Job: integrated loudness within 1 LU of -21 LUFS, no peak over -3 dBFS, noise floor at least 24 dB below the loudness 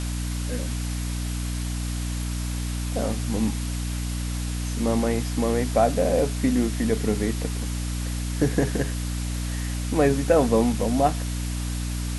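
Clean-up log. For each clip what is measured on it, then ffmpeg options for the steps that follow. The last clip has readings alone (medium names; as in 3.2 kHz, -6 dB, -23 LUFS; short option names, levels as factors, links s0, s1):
hum 60 Hz; highest harmonic 300 Hz; hum level -26 dBFS; noise floor -28 dBFS; noise floor target -50 dBFS; loudness -25.5 LUFS; peak level -7.0 dBFS; loudness target -21.0 LUFS
-> -af "bandreject=f=60:t=h:w=6,bandreject=f=120:t=h:w=6,bandreject=f=180:t=h:w=6,bandreject=f=240:t=h:w=6,bandreject=f=300:t=h:w=6"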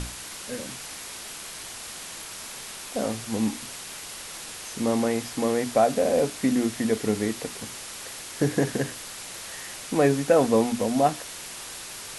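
hum not found; noise floor -39 dBFS; noise floor target -52 dBFS
-> -af "afftdn=nr=13:nf=-39"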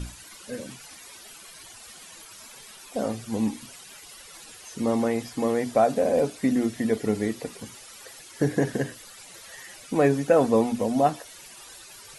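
noise floor -47 dBFS; noise floor target -49 dBFS
-> -af "afftdn=nr=6:nf=-47"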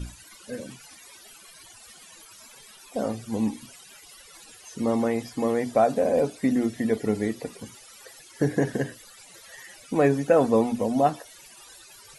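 noise floor -50 dBFS; loudness -25.0 LUFS; peak level -8.0 dBFS; loudness target -21.0 LUFS
-> -af "volume=1.58"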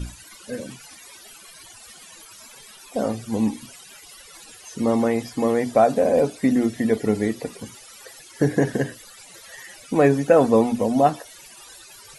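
loudness -21.0 LUFS; peak level -4.0 dBFS; noise floor -46 dBFS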